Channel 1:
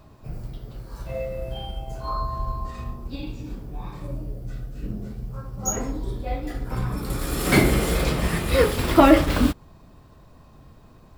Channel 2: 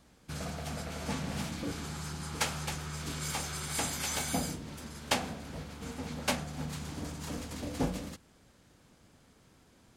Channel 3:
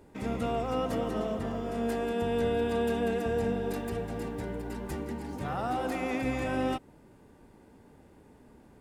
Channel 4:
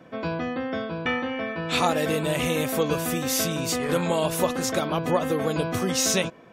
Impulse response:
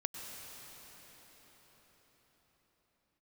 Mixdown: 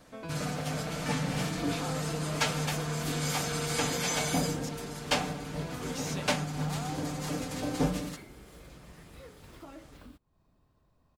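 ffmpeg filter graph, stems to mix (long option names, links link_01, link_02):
-filter_complex "[0:a]acompressor=threshold=-32dB:ratio=3,adelay=650,volume=-19.5dB[link_01];[1:a]acrossover=split=7200[link_02][link_03];[link_03]acompressor=threshold=-47dB:ratio=4:attack=1:release=60[link_04];[link_02][link_04]amix=inputs=2:normalize=0,aecho=1:1:6.7:0.79,volume=2.5dB[link_05];[2:a]lowpass=1200,lowshelf=frequency=490:gain=-11,adelay=1150,volume=-4.5dB[link_06];[3:a]acompressor=threshold=-26dB:ratio=6,volume=-11dB,asplit=3[link_07][link_08][link_09];[link_07]atrim=end=4.69,asetpts=PTS-STARTPTS,afade=type=out:start_time=4.686:duration=0.004:curve=hsin[link_10];[link_08]atrim=start=4.69:end=5.59,asetpts=PTS-STARTPTS,volume=0[link_11];[link_09]atrim=start=5.59,asetpts=PTS-STARTPTS,afade=type=in:duration=0.004:curve=hsin[link_12];[link_10][link_11][link_12]concat=n=3:v=0:a=1[link_13];[link_01][link_05][link_06][link_13]amix=inputs=4:normalize=0,asoftclip=type=tanh:threshold=-17dB"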